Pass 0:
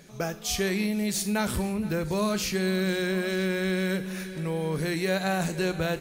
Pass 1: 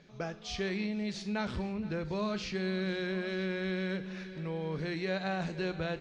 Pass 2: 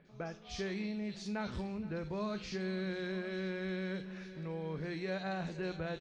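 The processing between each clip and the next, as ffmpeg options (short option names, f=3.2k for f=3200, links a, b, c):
-af "lowpass=f=4.9k:w=0.5412,lowpass=f=4.9k:w=1.3066,volume=-7dB"
-filter_complex "[0:a]acrossover=split=2900[a][b];[b]adelay=50[c];[a][c]amix=inputs=2:normalize=0,volume=-4dB"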